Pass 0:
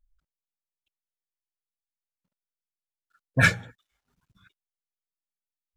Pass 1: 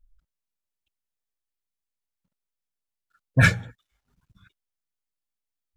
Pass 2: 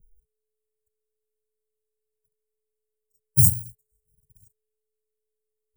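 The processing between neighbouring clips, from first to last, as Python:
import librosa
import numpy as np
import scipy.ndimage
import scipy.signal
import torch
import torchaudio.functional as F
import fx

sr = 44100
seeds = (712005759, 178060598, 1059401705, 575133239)

y1 = fx.low_shelf(x, sr, hz=150.0, db=9.5)
y2 = fx.bit_reversed(y1, sr, seeds[0], block=128)
y2 = y2 + 10.0 ** (-44.0 / 20.0) * np.sin(2.0 * np.pi * 430.0 * np.arange(len(y2)) / sr)
y2 = scipy.signal.sosfilt(scipy.signal.ellip(3, 1.0, 40, [150.0, 8000.0], 'bandstop', fs=sr, output='sos'), y2)
y2 = y2 * 10.0 ** (2.0 / 20.0)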